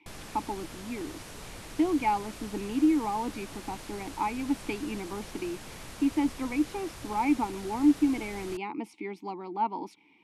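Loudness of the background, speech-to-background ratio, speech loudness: −44.0 LKFS, 13.0 dB, −31.0 LKFS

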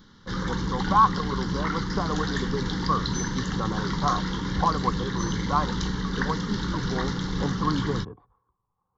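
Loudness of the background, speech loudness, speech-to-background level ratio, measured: −29.0 LKFS, −29.5 LKFS, −0.5 dB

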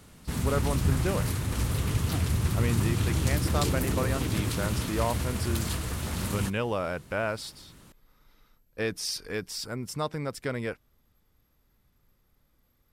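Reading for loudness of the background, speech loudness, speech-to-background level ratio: −29.5 LKFS, −33.0 LKFS, −3.5 dB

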